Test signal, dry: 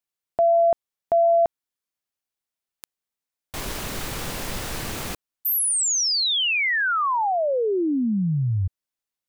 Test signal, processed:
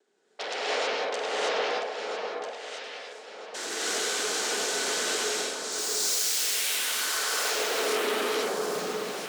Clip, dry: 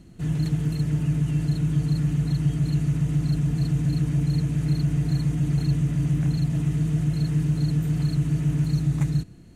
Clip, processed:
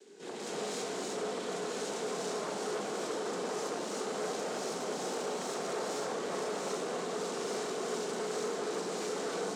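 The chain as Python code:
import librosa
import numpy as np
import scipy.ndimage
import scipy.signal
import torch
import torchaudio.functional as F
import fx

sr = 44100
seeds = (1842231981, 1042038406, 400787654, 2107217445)

p1 = fx.resonator_bank(x, sr, root=40, chord='minor', decay_s=0.62)
p2 = fx.dmg_noise_colour(p1, sr, seeds[0], colour='brown', level_db=-75.0)
p3 = fx.noise_vocoder(p2, sr, seeds[1], bands=6)
p4 = fx.small_body(p3, sr, hz=(430.0, 1500.0), ring_ms=45, db=10)
p5 = fx.fold_sine(p4, sr, drive_db=19, ceiling_db=-23.0)
p6 = p4 + (p5 * 10.0 ** (-9.0 / 20.0))
p7 = scipy.signal.sosfilt(scipy.signal.butter(4, 290.0, 'highpass', fs=sr, output='sos'), p6)
p8 = fx.high_shelf(p7, sr, hz=3000.0, db=9.5)
p9 = fx.notch(p8, sr, hz=1000.0, q=24.0)
p10 = fx.rider(p9, sr, range_db=3, speed_s=0.5)
p11 = fx.echo_alternate(p10, sr, ms=648, hz=1500.0, feedback_pct=59, wet_db=-4)
p12 = fx.rev_gated(p11, sr, seeds[2], gate_ms=350, shape='rising', drr_db=-6.5)
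p13 = fx.transformer_sat(p12, sr, knee_hz=940.0)
y = p13 * 10.0 ** (-6.5 / 20.0)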